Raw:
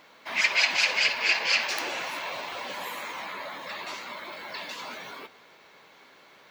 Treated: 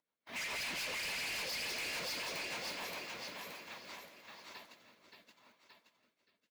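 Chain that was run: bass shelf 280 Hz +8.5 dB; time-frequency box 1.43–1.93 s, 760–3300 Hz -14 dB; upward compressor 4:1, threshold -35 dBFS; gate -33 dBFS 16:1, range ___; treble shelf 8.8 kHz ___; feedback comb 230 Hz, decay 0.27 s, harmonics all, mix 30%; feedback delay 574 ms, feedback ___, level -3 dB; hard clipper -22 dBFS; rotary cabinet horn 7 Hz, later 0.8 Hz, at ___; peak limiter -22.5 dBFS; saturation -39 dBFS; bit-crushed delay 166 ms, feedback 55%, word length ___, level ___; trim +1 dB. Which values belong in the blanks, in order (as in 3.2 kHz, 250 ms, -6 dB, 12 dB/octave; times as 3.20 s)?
-47 dB, +8.5 dB, 40%, 3.41 s, 13-bit, -13.5 dB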